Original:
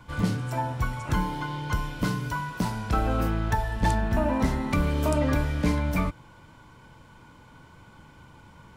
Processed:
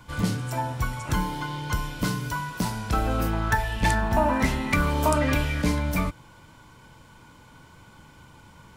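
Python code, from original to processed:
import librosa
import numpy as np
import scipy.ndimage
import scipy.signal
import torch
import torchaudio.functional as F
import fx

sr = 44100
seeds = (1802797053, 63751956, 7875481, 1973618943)

y = fx.high_shelf(x, sr, hz=3800.0, db=7.5)
y = fx.bell_lfo(y, sr, hz=1.2, low_hz=840.0, high_hz=2900.0, db=10, at=(3.33, 5.62))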